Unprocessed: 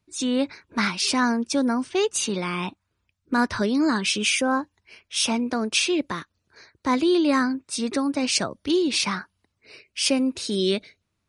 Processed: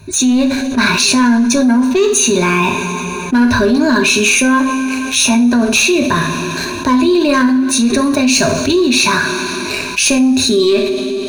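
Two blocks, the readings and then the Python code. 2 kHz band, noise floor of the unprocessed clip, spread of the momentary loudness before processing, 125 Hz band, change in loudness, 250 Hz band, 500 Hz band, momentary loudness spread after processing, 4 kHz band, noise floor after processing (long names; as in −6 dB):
+13.5 dB, −77 dBFS, 8 LU, +14.0 dB, +11.5 dB, +12.5 dB, +11.5 dB, 7 LU, +10.0 dB, −22 dBFS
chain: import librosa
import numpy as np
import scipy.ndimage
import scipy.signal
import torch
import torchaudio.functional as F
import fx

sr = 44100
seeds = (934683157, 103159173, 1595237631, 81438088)

y = fx.ripple_eq(x, sr, per_octave=1.5, db=16)
y = fx.leveller(y, sr, passes=2)
y = fx.low_shelf(y, sr, hz=210.0, db=8.0)
y = fx.rev_double_slope(y, sr, seeds[0], early_s=0.44, late_s=2.1, knee_db=-18, drr_db=3.5)
y = fx.env_flatten(y, sr, amount_pct=70)
y = y * 10.0 ** (-7.5 / 20.0)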